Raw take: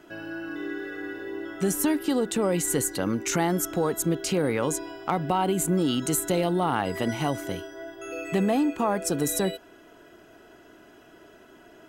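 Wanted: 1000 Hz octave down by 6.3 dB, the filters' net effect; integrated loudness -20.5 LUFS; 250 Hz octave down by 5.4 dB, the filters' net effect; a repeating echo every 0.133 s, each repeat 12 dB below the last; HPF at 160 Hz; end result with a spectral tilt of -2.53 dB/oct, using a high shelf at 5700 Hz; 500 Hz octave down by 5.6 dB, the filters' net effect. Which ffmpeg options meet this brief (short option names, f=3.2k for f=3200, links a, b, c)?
-af "highpass=160,equalizer=f=250:t=o:g=-4.5,equalizer=f=500:t=o:g=-4,equalizer=f=1k:t=o:g=-7,highshelf=f=5.7k:g=9,aecho=1:1:133|266|399:0.251|0.0628|0.0157,volume=5dB"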